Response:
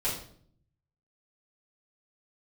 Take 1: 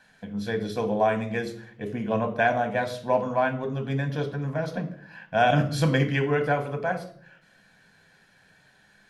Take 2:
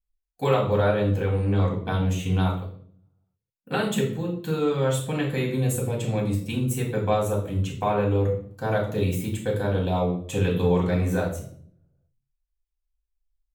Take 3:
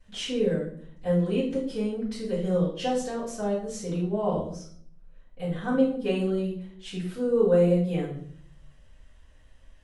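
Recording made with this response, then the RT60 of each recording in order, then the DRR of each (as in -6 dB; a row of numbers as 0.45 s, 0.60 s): 3; 0.60 s, 0.55 s, 0.55 s; 5.5 dB, -3.0 dB, -10.5 dB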